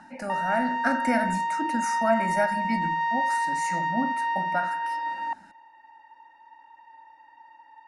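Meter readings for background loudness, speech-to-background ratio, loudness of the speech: −27.5 LKFS, −2.5 dB, −30.0 LKFS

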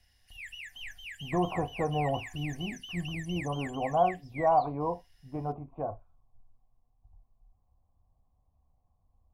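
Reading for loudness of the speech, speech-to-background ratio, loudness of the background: −32.0 LKFS, 10.5 dB, −42.5 LKFS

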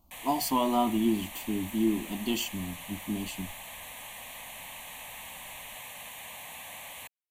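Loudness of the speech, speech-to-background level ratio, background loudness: −30.5 LKFS, 11.0 dB, −41.5 LKFS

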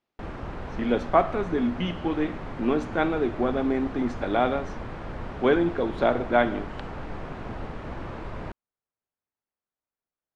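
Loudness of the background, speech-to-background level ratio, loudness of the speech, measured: −37.5 LKFS, 11.5 dB, −26.0 LKFS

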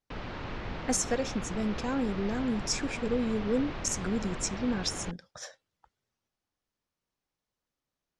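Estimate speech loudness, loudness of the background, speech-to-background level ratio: −31.5 LKFS, −39.5 LKFS, 8.0 dB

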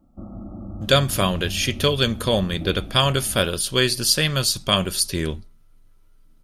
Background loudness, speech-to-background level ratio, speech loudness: −36.0 LKFS, 15.5 dB, −20.5 LKFS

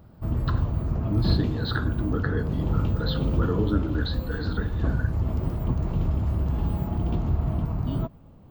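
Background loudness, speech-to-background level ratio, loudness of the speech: −27.5 LKFS, −4.5 dB, −32.0 LKFS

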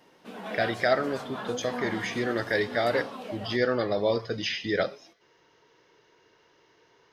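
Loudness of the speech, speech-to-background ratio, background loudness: −28.5 LKFS, 9.5 dB, −38.0 LKFS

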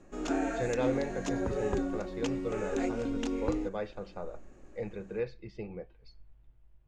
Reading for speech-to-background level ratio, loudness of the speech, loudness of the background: −4.0 dB, −38.5 LKFS, −34.5 LKFS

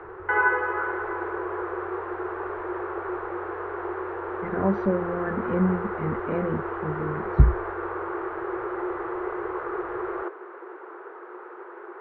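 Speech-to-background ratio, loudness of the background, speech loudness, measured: 2.5 dB, −30.0 LKFS, −27.5 LKFS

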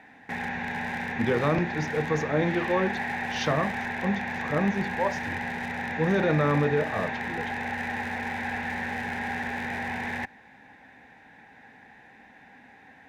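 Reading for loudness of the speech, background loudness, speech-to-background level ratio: −28.0 LKFS, −31.5 LKFS, 3.5 dB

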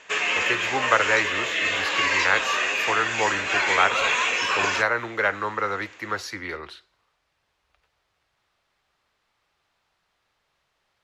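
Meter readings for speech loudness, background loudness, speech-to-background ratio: −26.0 LKFS, −22.5 LKFS, −3.5 dB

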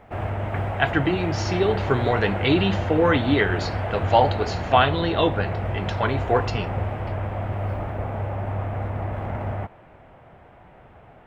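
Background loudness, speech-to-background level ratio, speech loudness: −28.0 LKFS, 5.0 dB, −23.0 LKFS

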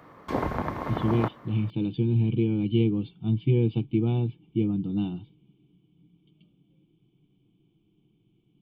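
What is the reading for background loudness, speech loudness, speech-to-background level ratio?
−31.5 LKFS, −27.0 LKFS, 4.5 dB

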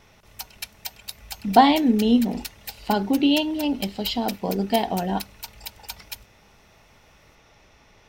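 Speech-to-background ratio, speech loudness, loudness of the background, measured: 15.5 dB, −22.0 LKFS, −37.5 LKFS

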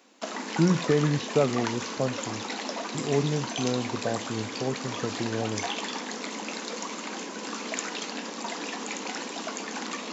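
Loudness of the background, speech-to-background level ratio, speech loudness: −33.5 LKFS, 4.5 dB, −29.0 LKFS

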